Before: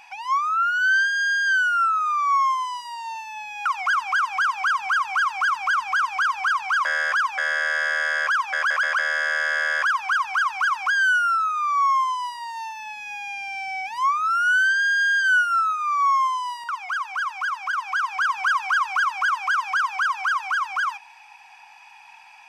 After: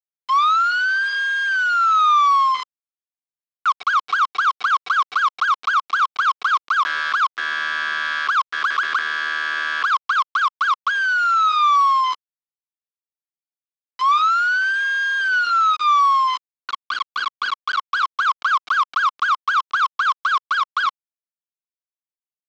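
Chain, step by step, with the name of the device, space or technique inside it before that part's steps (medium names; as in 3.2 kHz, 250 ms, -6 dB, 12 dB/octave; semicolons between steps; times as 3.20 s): hand-held game console (bit crusher 4-bit; cabinet simulation 410–4300 Hz, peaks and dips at 570 Hz -7 dB, 800 Hz -8 dB, 1.2 kHz +8 dB, 1.8 kHz -5 dB)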